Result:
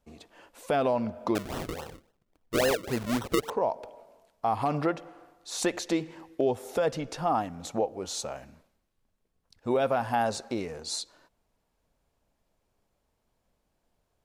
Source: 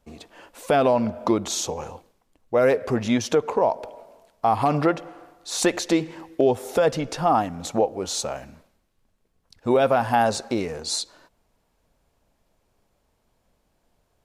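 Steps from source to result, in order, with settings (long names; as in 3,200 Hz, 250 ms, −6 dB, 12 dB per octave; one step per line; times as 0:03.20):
0:01.35–0:03.50: sample-and-hold swept by an LFO 37×, swing 100% 3.6 Hz
level −7 dB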